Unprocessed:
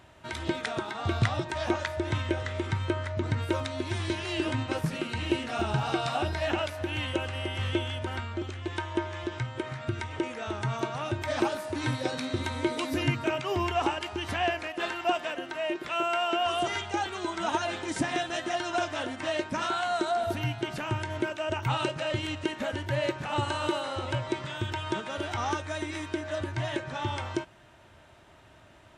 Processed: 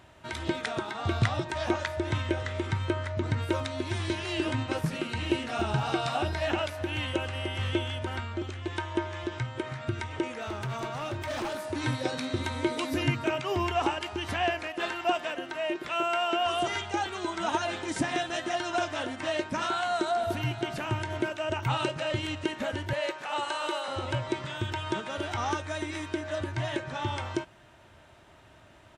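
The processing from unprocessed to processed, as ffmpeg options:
-filter_complex "[0:a]asettb=1/sr,asplit=3[s0][s1][s2];[s0]atrim=end=10.394[s3];[s1]atrim=start=10.39:end=11.61,asetpts=PTS-STARTPTS,afade=t=in:d=0.004:c=qsin,afade=t=out:st=1.216:d=0.004:c=qsin,asoftclip=type=hard:threshold=0.0316[s4];[s2]atrim=start=11.606[s5];[s3][s4]acrossfade=d=0.004:c1=hsin:c2=qsin[s6];[s6][s5]acrossfade=d=0.004:c1=qsin:c2=hsin,asplit=2[s7][s8];[s8]afade=t=in:st=19.8:d=0.01,afade=t=out:st=20.79:d=0.01,aecho=0:1:500|1000|1500:0.177828|0.0622398|0.0217839[s9];[s7][s9]amix=inputs=2:normalize=0,asettb=1/sr,asplit=3[s10][s11][s12];[s10]atrim=end=22.934[s13];[s11]atrim=start=22.93:end=23.88,asetpts=PTS-STARTPTS,afade=t=in:d=0.004:c=qsin,afade=t=out:st=0.946:d=0.004:c=qsin,highpass=490[s14];[s12]atrim=start=23.876[s15];[s13][s14]acrossfade=d=0.004:c1=hsin:c2=qsin[s16];[s16][s15]acrossfade=d=0.004:c1=qsin:c2=hsin"

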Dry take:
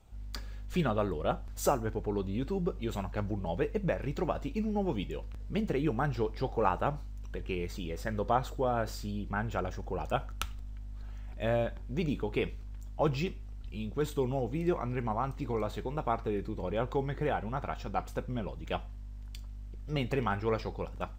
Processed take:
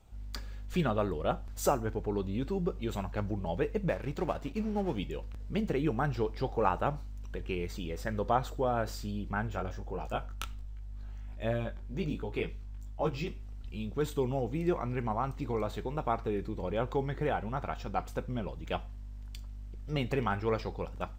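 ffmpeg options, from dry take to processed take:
-filter_complex "[0:a]asettb=1/sr,asplit=3[s0][s1][s2];[s0]atrim=end=3.894[s3];[s1]atrim=start=3.89:end=4.99,asetpts=PTS-STARTPTS,afade=t=in:d=0.004:c=qsin,afade=t=out:st=1.096:d=0.004:c=qsin,aeval=exprs='sgn(val(0))*max(abs(val(0))-0.00398,0)':c=same[s4];[s2]atrim=start=4.986[s5];[s3][s4]acrossfade=d=0.004:c1=hsin:c2=qsin[s6];[s6][s5]acrossfade=d=0.004:c1=qsin:c2=hsin,asplit=3[s7][s8][s9];[s7]afade=t=out:st=9.47:d=0.02[s10];[s8]flanger=delay=17.5:depth=3.7:speed=1.3,afade=t=in:st=9.47:d=0.02,afade=t=out:st=13.26:d=0.02[s11];[s9]afade=t=in:st=13.26:d=0.02[s12];[s10][s11][s12]amix=inputs=3:normalize=0"

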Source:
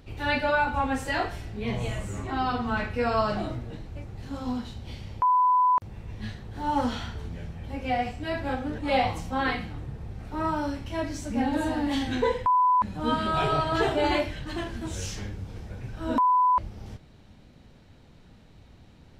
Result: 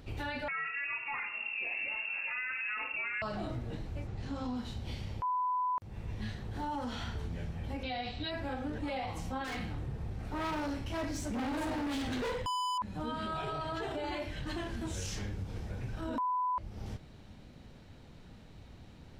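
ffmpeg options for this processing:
-filter_complex "[0:a]asettb=1/sr,asplit=3[s0][s1][s2];[s0]atrim=end=0.484[s3];[s1]atrim=start=0.48:end=3.22,asetpts=PTS-STARTPTS,afade=t=in:d=0.004:c=qsin,afade=t=out:st=2.736:d=0.004:c=qsin,lowpass=f=2400:t=q:w=0.5098,lowpass=f=2400:t=q:w=0.6013,lowpass=f=2400:t=q:w=0.9,lowpass=f=2400:t=q:w=2.563,afreqshift=-2800[s4];[s2]atrim=start=3.216[s5];[s3][s4]acrossfade=d=0.004:c1=hsin:c2=qsin[s6];[s6][s5]acrossfade=d=0.004:c1=qsin:c2=hsin,asettb=1/sr,asplit=3[s7][s8][s9];[s7]atrim=end=4.074[s10];[s8]atrim=start=4.07:end=4.57,asetpts=PTS-STARTPTS,afade=t=in:d=0.004:c=qsin,afade=t=out:st=0.496:d=0.004:c=qsin,lowpass=7000[s11];[s9]atrim=start=4.566[s12];[s10][s11]acrossfade=d=0.004:c1=hsin:c2=qsin[s13];[s13][s12]acrossfade=d=0.004:c1=qsin:c2=hsin,asettb=1/sr,asplit=3[s14][s15][s16];[s14]atrim=end=7.834[s17];[s15]atrim=start=7.83:end=8.31,asetpts=PTS-STARTPTS,afade=t=in:d=0.004:c=qsin,afade=t=out:st=0.476:d=0.004:c=qsin,lowpass=f=3900:t=q:w=13[s18];[s16]atrim=start=8.306[s19];[s17][s18]acrossfade=d=0.004:c1=hsin:c2=qsin[s20];[s20][s19]acrossfade=d=0.004:c1=qsin:c2=hsin,asettb=1/sr,asplit=3[s21][s22][s23];[s21]atrim=end=9.444[s24];[s22]atrim=start=9.44:end=12.78,asetpts=PTS-STARTPTS,afade=t=in:d=0.004:c=qsin,afade=t=out:st=3.336:d=0.004:c=qsin,asoftclip=type=hard:threshold=0.0282[s25];[s23]atrim=start=12.776[s26];[s24][s25]acrossfade=d=0.004:c1=hsin:c2=qsin[s27];[s27][s26]acrossfade=d=0.004:c1=qsin:c2=hsin,acompressor=threshold=0.02:ratio=3,alimiter=level_in=1.78:limit=0.0631:level=0:latency=1:release=20,volume=0.562"

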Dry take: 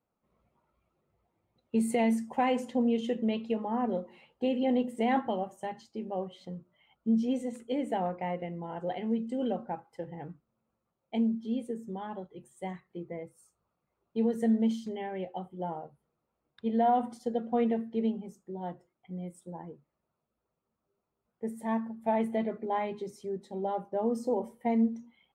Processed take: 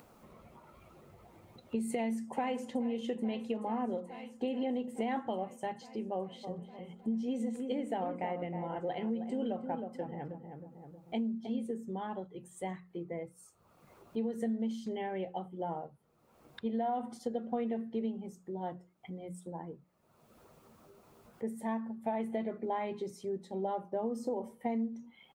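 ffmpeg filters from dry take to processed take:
-filter_complex "[0:a]asplit=2[s0][s1];[s1]afade=t=in:st=1.89:d=0.01,afade=t=out:st=2.71:d=0.01,aecho=0:1:430|860|1290|1720|2150|2580|3010|3440|3870|4300|4730|5160:0.133352|0.106682|0.0853454|0.0682763|0.054621|0.0436968|0.0349575|0.027966|0.0223728|0.0178982|0.0143186|0.0114549[s2];[s0][s2]amix=inputs=2:normalize=0,asplit=3[s3][s4][s5];[s3]afade=t=out:st=6.43:d=0.02[s6];[s4]asplit=2[s7][s8];[s8]adelay=315,lowpass=f=1300:p=1,volume=0.376,asplit=2[s9][s10];[s10]adelay=315,lowpass=f=1300:p=1,volume=0.33,asplit=2[s11][s12];[s12]adelay=315,lowpass=f=1300:p=1,volume=0.33,asplit=2[s13][s14];[s14]adelay=315,lowpass=f=1300:p=1,volume=0.33[s15];[s7][s9][s11][s13][s15]amix=inputs=5:normalize=0,afade=t=in:st=6.43:d=0.02,afade=t=out:st=11.68:d=0.02[s16];[s5]afade=t=in:st=11.68:d=0.02[s17];[s6][s16][s17]amix=inputs=3:normalize=0,acompressor=threshold=0.0282:ratio=6,bandreject=f=60:t=h:w=6,bandreject=f=120:t=h:w=6,bandreject=f=180:t=h:w=6,acompressor=mode=upward:threshold=0.01:ratio=2.5"

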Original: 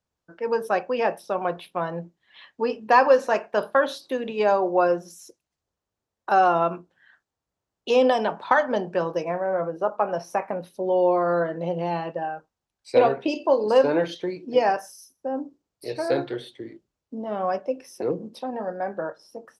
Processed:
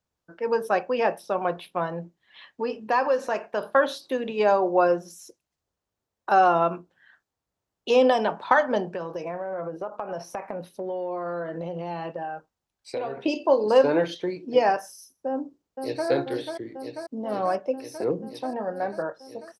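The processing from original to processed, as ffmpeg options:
-filter_complex "[0:a]asettb=1/sr,asplit=3[s0][s1][s2];[s0]atrim=end=1.864[s3];[s1]atrim=start=1.86:end=3.69,asetpts=PTS-STARTPTS,afade=t=in:d=0.004:c=qsin,afade=t=out:st=1.826:d=0.004:c=qsin,acompressor=threshold=0.0355:ratio=1.5:attack=3.2:release=140:knee=1:detection=peak[s4];[s2]atrim=start=3.686[s5];[s3][s4]acrossfade=d=0.004:c1=hsin:c2=qsin[s6];[s6][s5]acrossfade=d=0.004:c1=qsin:c2=hsin,asettb=1/sr,asplit=3[s7][s8][s9];[s7]atrim=end=8.934[s10];[s8]atrim=start=8.93:end=13.26,asetpts=PTS-STARTPTS,afade=t=in:d=0.004:c=qsin,afade=t=out:st=4.326:d=0.004:c=qsin,acompressor=threshold=0.0398:ratio=5:attack=3.2:release=140:knee=1:detection=peak[s11];[s9]atrim=start=13.256[s12];[s10][s11]acrossfade=d=0.004:c1=hsin:c2=qsin[s13];[s13][s12]acrossfade=d=0.004:c1=qsin:c2=hsin,asplit=2[s14][s15];[s15]afade=t=in:st=15.28:d=0.01,afade=t=out:st=16.08:d=0.01,aecho=0:1:490|980|1470|1960|2450|2940|3430|3920|4410|4900|5390|5880:0.530884|0.424708|0.339766|0.271813|0.21745|0.17396|0.139168|0.111335|0.0890676|0.0712541|0.0570033|0.0456026[s16];[s14][s16]amix=inputs=2:normalize=0"

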